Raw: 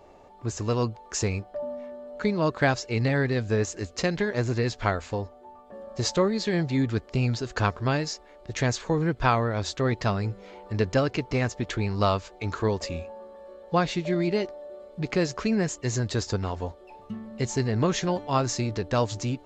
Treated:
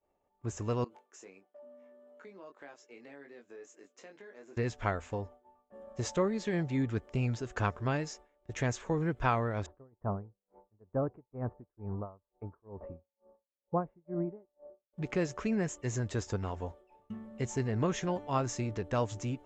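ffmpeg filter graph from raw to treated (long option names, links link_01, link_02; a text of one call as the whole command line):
ffmpeg -i in.wav -filter_complex "[0:a]asettb=1/sr,asplit=3[link_01][link_02][link_03];[link_01]atrim=end=0.844[link_04];[link_02]atrim=start=0.84:end=4.57,asetpts=PTS-STARTPTS,afade=type=in:duration=0.004:curve=qsin,afade=type=out:start_time=3.726:duration=0.004:curve=qsin,highpass=frequency=260:width=0.5412,highpass=frequency=260:width=1.3066,asplit=2[link_05][link_06];[link_06]adelay=21,volume=-4.5dB[link_07];[link_05][link_07]amix=inputs=2:normalize=0,atrim=end_sample=164493,acompressor=threshold=-42dB:ratio=4:attack=3.2:release=140:knee=1:detection=peak[link_08];[link_03]atrim=start=4.566[link_09];[link_04][link_08]acrossfade=duration=0.004:curve1=hsin:curve2=qsin[link_10];[link_10][link_09]acrossfade=duration=0.004:curve1=qsin:curve2=hsin,asettb=1/sr,asplit=3[link_11][link_12][link_13];[link_11]atrim=end=9.664[link_14];[link_12]atrim=start=9.66:end=14.93,asetpts=PTS-STARTPTS,afade=type=in:duration=0.004:curve=qsin,afade=type=out:start_time=5.266:duration=0.004:curve=qsin,lowpass=frequency=1100:width=0.5412,lowpass=frequency=1100:width=1.3066,aeval=exprs='val(0)*pow(10,-24*(0.5-0.5*cos(2*PI*2.2*n/s))/20)':channel_layout=same[link_15];[link_13]atrim=start=14.926[link_16];[link_14][link_15]acrossfade=duration=0.004:curve1=hsin:curve2=qsin[link_17];[link_17][link_16]acrossfade=duration=0.004:curve1=qsin:curve2=hsin,agate=range=-33dB:threshold=-39dB:ratio=3:detection=peak,equalizer=frequency=4400:width_type=o:width=0.5:gain=-12,volume=-6.5dB" out.wav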